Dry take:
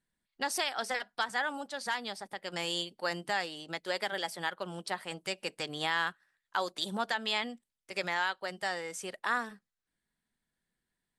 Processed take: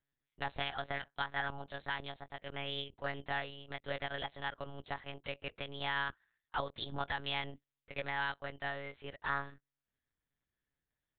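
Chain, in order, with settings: monotone LPC vocoder at 8 kHz 140 Hz; 2.53–3.30 s: loudspeaker Doppler distortion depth 0.13 ms; trim -4.5 dB

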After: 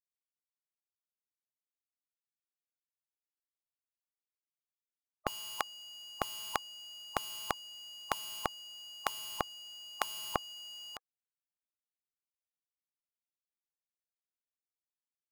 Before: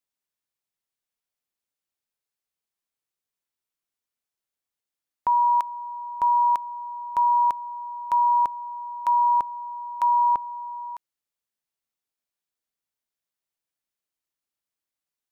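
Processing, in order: companding laws mixed up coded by A; spectral gate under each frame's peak -20 dB weak; gain riding within 3 dB 2 s; trim +9 dB

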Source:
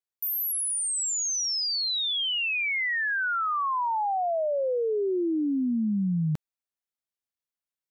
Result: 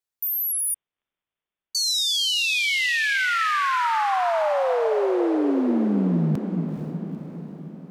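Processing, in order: echo that smears into a reverb 457 ms, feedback 56%, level -6 dB; 0.74–1.75 s: frequency inversion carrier 3.6 kHz; trim +3.5 dB

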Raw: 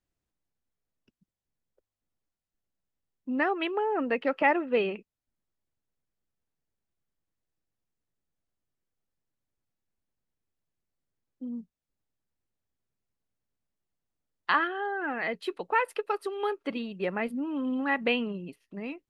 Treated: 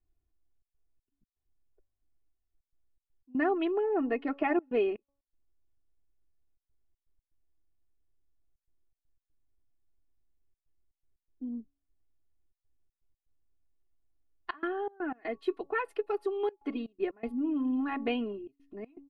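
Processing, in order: tilt EQ -3 dB/octave; comb 2.8 ms, depth 100%; de-hum 280 Hz, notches 4; trance gate "xxxxx.xx.x.xxxxx" 121 bpm -24 dB; trim -7.5 dB

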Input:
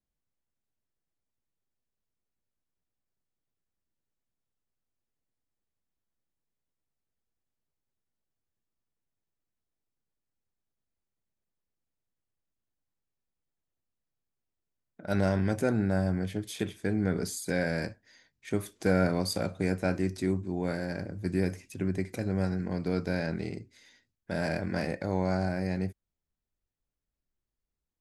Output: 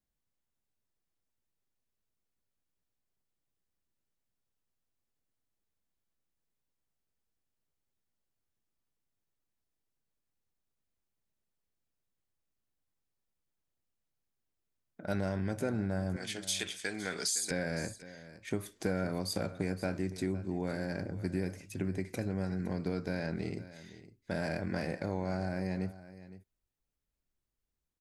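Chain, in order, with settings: 16.16–17.51 s: frequency weighting ITU-R 468; compression 3:1, threshold -31 dBFS, peak gain reduction 9 dB; delay 512 ms -16 dB

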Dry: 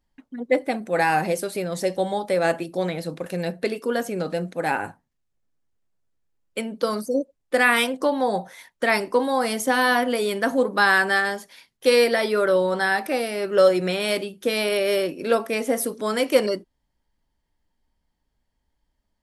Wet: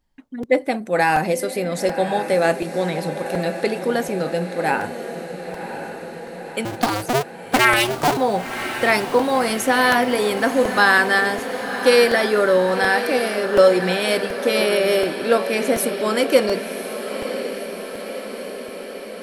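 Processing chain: 6.65–8.17 s: cycle switcher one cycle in 2, inverted; echo that smears into a reverb 1044 ms, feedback 66%, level -10 dB; crackling interface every 0.73 s, samples 128, repeat, from 0.43 s; trim +3 dB

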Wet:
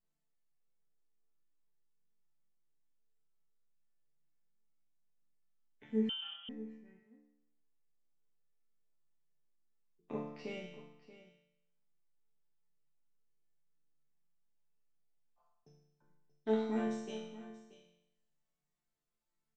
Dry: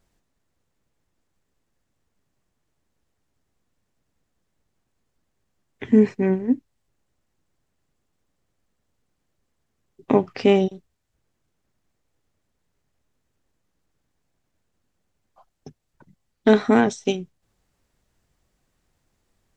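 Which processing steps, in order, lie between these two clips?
chord resonator D3 minor, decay 0.83 s; delay 631 ms -15.5 dB; 6.09–6.49 s: frequency inversion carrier 3.3 kHz

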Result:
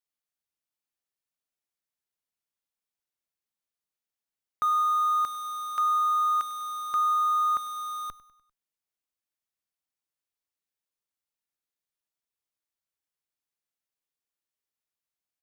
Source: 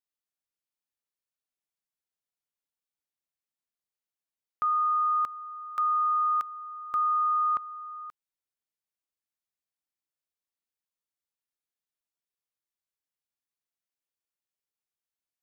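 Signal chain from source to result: in parallel at -5 dB: Schmitt trigger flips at -47 dBFS; on the sum: feedback delay 99 ms, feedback 48%, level -18.5 dB

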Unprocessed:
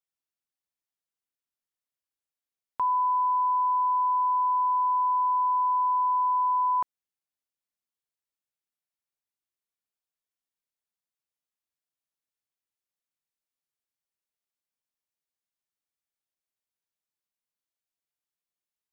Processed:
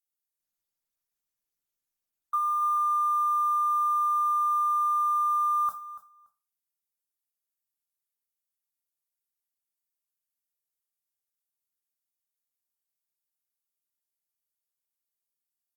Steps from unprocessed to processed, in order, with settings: zero-crossing glitches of -36.5 dBFS; static phaser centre 770 Hz, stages 4; in parallel at +1 dB: compression 16:1, threshold -36 dBFS, peak gain reduction 12 dB; on the sum: gate -28 dBFS, range -46 dB; feedback delay 344 ms, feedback 16%, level -15.5 dB; tape speed +20%; on a send at -4.5 dB: reverberation RT60 0.30 s, pre-delay 8 ms; on the sum: trim -4.5 dB; Opus 48 kbps 48 kHz

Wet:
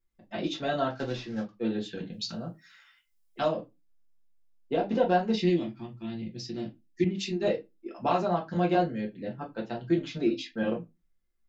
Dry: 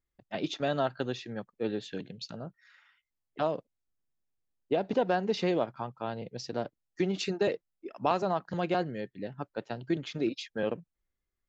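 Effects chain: 0.90–1.54 s: CVSD coder 32 kbps; 2.12–3.48 s: treble shelf 3.4 kHz +11.5 dB; 5.35–7.42 s: time-frequency box 390–1700 Hz -15 dB; reverberation RT60 0.20 s, pre-delay 4 ms, DRR -2.5 dB; 7.04–7.47 s: three bands expanded up and down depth 100%; trim -3.5 dB

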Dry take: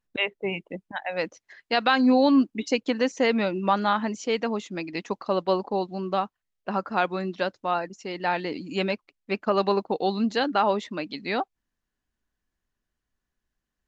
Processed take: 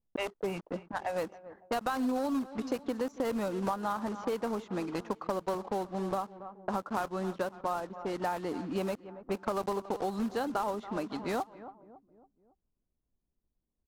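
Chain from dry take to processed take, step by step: block-companded coder 3-bit; resonant high shelf 1.6 kHz -8 dB, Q 1.5; on a send: feedback delay 278 ms, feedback 51%, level -20.5 dB; on the sum: compression 5:1, threshold -30 dBFS, peak gain reduction 14.5 dB; level-controlled noise filter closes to 480 Hz, open at -29 dBFS

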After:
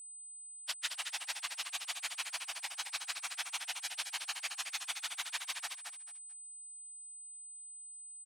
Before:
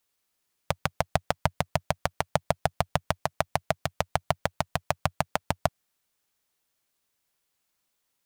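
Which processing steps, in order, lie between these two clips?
frequency axis rescaled in octaves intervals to 114%; compression, threshold -31 dBFS, peak gain reduction 6.5 dB; Butterworth band-pass 5.7 kHz, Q 0.63; feedback delay 220 ms, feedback 23%, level -6 dB; whistle 8.1 kHz -54 dBFS; trim +7 dB

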